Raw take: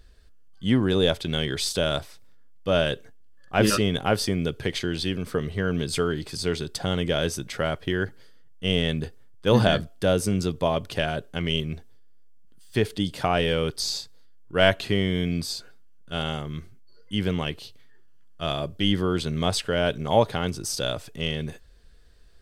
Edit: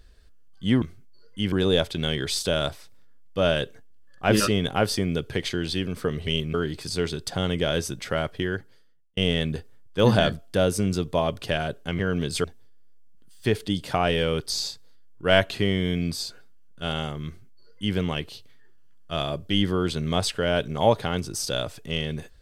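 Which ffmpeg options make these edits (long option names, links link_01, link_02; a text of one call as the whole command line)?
ffmpeg -i in.wav -filter_complex "[0:a]asplit=8[link_01][link_02][link_03][link_04][link_05][link_06][link_07][link_08];[link_01]atrim=end=0.822[link_09];[link_02]atrim=start=16.558:end=17.262[link_10];[link_03]atrim=start=0.818:end=5.572[link_11];[link_04]atrim=start=11.468:end=11.742[link_12];[link_05]atrim=start=6.018:end=8.65,asetpts=PTS-STARTPTS,afade=type=out:start_time=1.792:duration=0.84[link_13];[link_06]atrim=start=8.65:end=11.472,asetpts=PTS-STARTPTS,afade=type=in:duration=0.004:curve=hsin[link_14];[link_07]atrim=start=5.568:end=6.022[link_15];[link_08]atrim=start=11.738[link_16];[link_09][link_10]acrossfade=duration=0.004:curve1=hsin:curve2=hsin[link_17];[link_17][link_11]acrossfade=duration=0.004:curve1=hsin:curve2=hsin[link_18];[link_18][link_12]acrossfade=duration=0.004:curve1=hsin:curve2=hsin[link_19];[link_13][link_14]concat=n=2:v=0:a=1[link_20];[link_19][link_20]acrossfade=duration=0.004:curve1=hsin:curve2=hsin[link_21];[link_21][link_15]acrossfade=duration=0.004:curve1=hsin:curve2=hsin[link_22];[link_22][link_16]acrossfade=duration=0.004:curve1=hsin:curve2=hsin" out.wav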